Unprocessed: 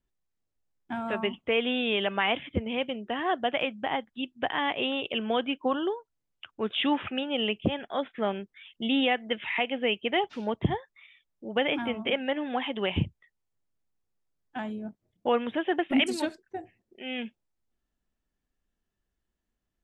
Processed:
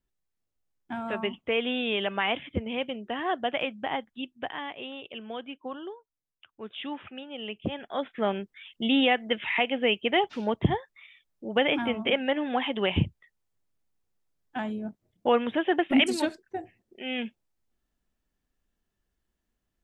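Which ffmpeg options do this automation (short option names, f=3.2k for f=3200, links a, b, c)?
-af "volume=11.5dB,afade=t=out:st=4.08:d=0.64:silence=0.354813,afade=t=in:st=7.41:d=0.96:silence=0.237137"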